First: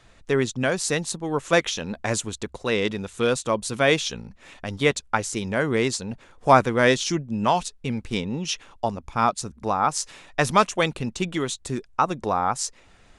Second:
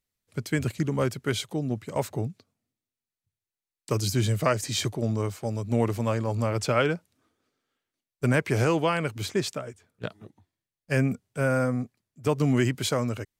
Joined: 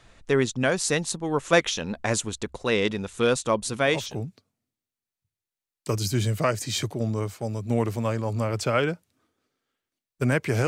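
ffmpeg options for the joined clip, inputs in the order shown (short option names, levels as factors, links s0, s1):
-filter_complex "[0:a]apad=whole_dur=10.67,atrim=end=10.67,atrim=end=4.34,asetpts=PTS-STARTPTS[s0];[1:a]atrim=start=1.66:end=8.69,asetpts=PTS-STARTPTS[s1];[s0][s1]acrossfade=d=0.7:c1=tri:c2=tri"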